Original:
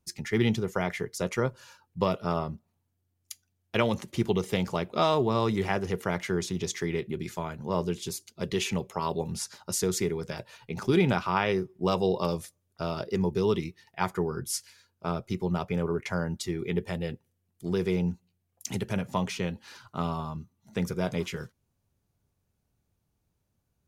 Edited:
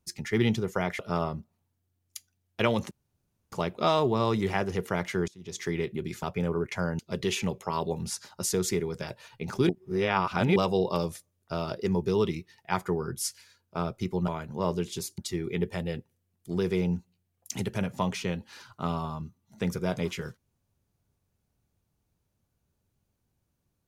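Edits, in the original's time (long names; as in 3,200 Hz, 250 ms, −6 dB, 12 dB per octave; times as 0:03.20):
0:00.99–0:02.14: remove
0:04.06–0:04.67: fill with room tone
0:06.43–0:06.80: fade in quadratic, from −22.5 dB
0:07.38–0:08.28: swap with 0:15.57–0:16.33
0:10.98–0:11.85: reverse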